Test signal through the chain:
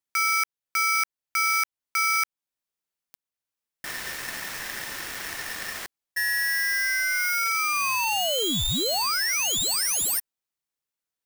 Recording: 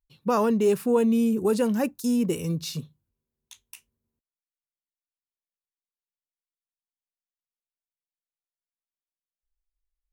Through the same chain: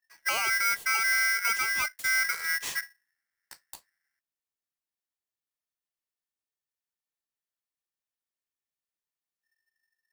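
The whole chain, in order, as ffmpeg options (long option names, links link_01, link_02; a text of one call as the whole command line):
ffmpeg -i in.wav -af "alimiter=limit=-20dB:level=0:latency=1:release=396,aeval=exprs='val(0)*sgn(sin(2*PI*1800*n/s))':channel_layout=same" out.wav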